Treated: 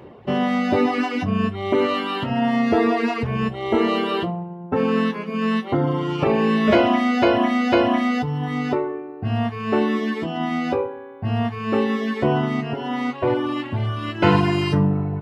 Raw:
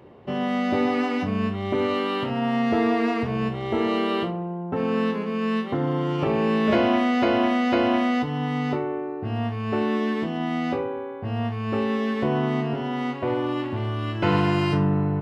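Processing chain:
reverb reduction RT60 1.6 s
level +6.5 dB

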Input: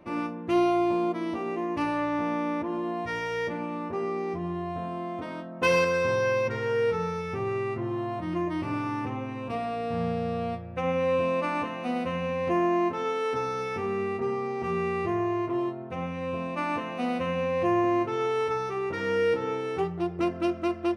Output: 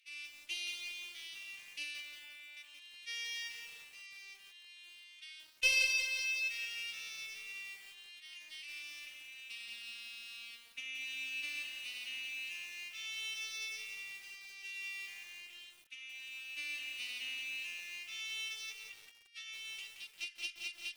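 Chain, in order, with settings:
Butterworth high-pass 2,600 Hz 36 dB per octave
0:18.72–0:19.48: compressor whose output falls as the input rises −56 dBFS, ratio −0.5
harmonic generator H 2 −13 dB, 5 −26 dB, 6 −36 dB, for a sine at −20 dBFS
0:01.98–0:02.57: high-frequency loss of the air 280 metres
feedback echo at a low word length 175 ms, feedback 55%, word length 9 bits, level −6 dB
level +1.5 dB

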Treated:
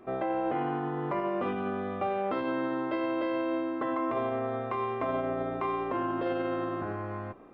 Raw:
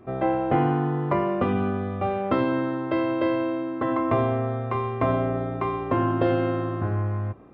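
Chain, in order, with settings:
brickwall limiter −20.5 dBFS, peak gain reduction 10.5 dB
parametric band 95 Hz −15 dB 1.7 octaves

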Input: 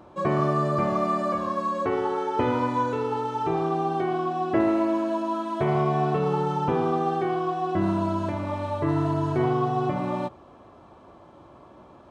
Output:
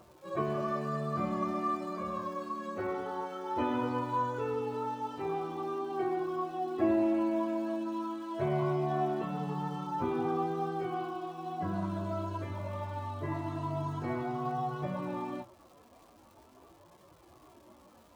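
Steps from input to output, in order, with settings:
time stretch by phase vocoder 1.5×
surface crackle 490 per second −47 dBFS
flanger 0.47 Hz, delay 1.7 ms, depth 2.6 ms, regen −48%
level −2 dB

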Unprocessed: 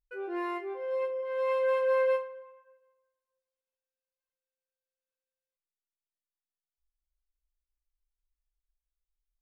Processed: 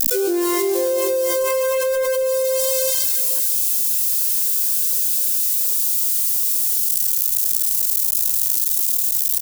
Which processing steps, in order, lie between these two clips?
spike at every zero crossing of −31.5 dBFS
bass and treble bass +10 dB, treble +8 dB
multi-tap delay 85/104/410/738 ms −8.5/−6.5/−11.5/−19 dB
leveller curve on the samples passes 1
octave-band graphic EQ 250/500/1,000/2,000 Hz +9/+5/−8/−3 dB
envelope flattener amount 100%

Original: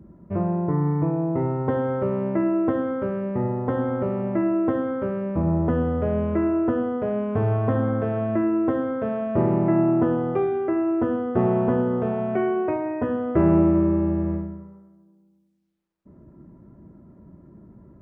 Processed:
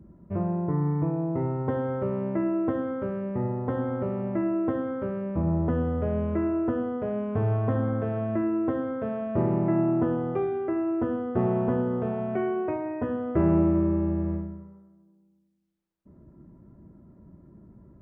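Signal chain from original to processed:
low-shelf EQ 130 Hz +4.5 dB
level −5 dB

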